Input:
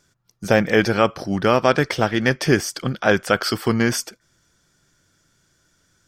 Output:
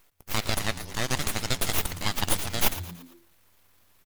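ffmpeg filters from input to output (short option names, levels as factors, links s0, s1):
-filter_complex "[0:a]aderivative,bandreject=f=427.4:t=h:w=4,bandreject=f=854.8:t=h:w=4,bandreject=f=1282.2:t=h:w=4,bandreject=f=1709.6:t=h:w=4,bandreject=f=2137:t=h:w=4,bandreject=f=2564.4:t=h:w=4,bandreject=f=2991.8:t=h:w=4,bandreject=f=3419.2:t=h:w=4,bandreject=f=3846.6:t=h:w=4,bandreject=f=4274:t=h:w=4,bandreject=f=4701.4:t=h:w=4,bandreject=f=5128.8:t=h:w=4,bandreject=f=5556.2:t=h:w=4,bandreject=f=5983.6:t=h:w=4,bandreject=f=6411:t=h:w=4,bandreject=f=6838.4:t=h:w=4,bandreject=f=7265.8:t=h:w=4,bandreject=f=7693.2:t=h:w=4,bandreject=f=8120.6:t=h:w=4,bandreject=f=8548:t=h:w=4,atempo=1.5,aeval=exprs='abs(val(0))':c=same,asplit=2[s0][s1];[s1]asplit=4[s2][s3][s4][s5];[s2]adelay=114,afreqshift=85,volume=0.2[s6];[s3]adelay=228,afreqshift=170,volume=0.0923[s7];[s4]adelay=342,afreqshift=255,volume=0.0422[s8];[s5]adelay=456,afreqshift=340,volume=0.0195[s9];[s6][s7][s8][s9]amix=inputs=4:normalize=0[s10];[s0][s10]amix=inputs=2:normalize=0,volume=2.51"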